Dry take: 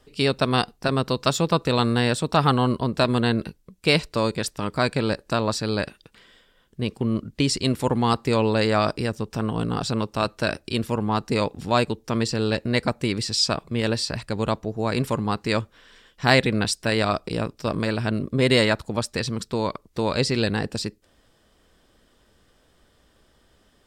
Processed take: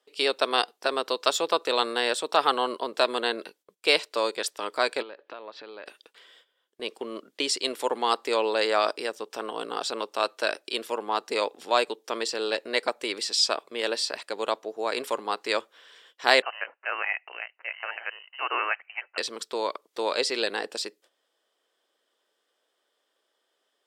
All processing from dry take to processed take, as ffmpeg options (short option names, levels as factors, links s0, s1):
-filter_complex "[0:a]asettb=1/sr,asplit=3[s0][s1][s2];[s0]atrim=end=5.024[s3];[s1]atrim=start=5.02:end=5.86,asetpts=PTS-STARTPTS,afade=t=in:d=0.004:c=qsin,afade=t=out:st=0.836:d=0.004:c=qsin,lowpass=f=3300:w=0.5412,lowpass=f=3300:w=1.3066,acompressor=threshold=0.0282:ratio=10:attack=3.2:release=140:knee=1:detection=peak[s4];[s2]atrim=start=5.856[s5];[s3][s4]acrossfade=d=0.004:c1=hsin:c2=qsin[s6];[s6][s5]acrossfade=d=0.004:c1=qsin:c2=hsin,asettb=1/sr,asplit=3[s7][s8][s9];[s7]atrim=end=16.424[s10];[s8]atrim=start=16.42:end=19.18,asetpts=PTS-STARTPTS,afade=t=in:d=0.004:c=qsin,afade=t=out:st=2.756:d=0.004:c=qsin,highpass=970,lowpass=f=2700:t=q:w=0.5098,lowpass=f=2700:t=q:w=0.6013,lowpass=f=2700:t=q:w=0.9,lowpass=f=2700:t=q:w=2.563,afreqshift=-3200[s11];[s9]atrim=start=19.176[s12];[s10][s11]acrossfade=d=0.004:c1=hsin:c2=qsin[s13];[s13][s12]acrossfade=d=0.004:c1=qsin:c2=hsin,highpass=f=390:w=0.5412,highpass=f=390:w=1.3066,agate=range=0.282:threshold=0.00158:ratio=16:detection=peak,equalizer=f=3300:t=o:w=0.29:g=4.5,volume=0.841"